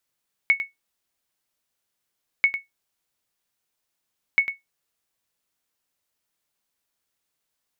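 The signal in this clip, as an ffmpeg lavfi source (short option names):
-f lavfi -i "aevalsrc='0.355*(sin(2*PI*2210*mod(t,1.94))*exp(-6.91*mod(t,1.94)/0.16)+0.282*sin(2*PI*2210*max(mod(t,1.94)-0.1,0))*exp(-6.91*max(mod(t,1.94)-0.1,0)/0.16))':d=5.82:s=44100"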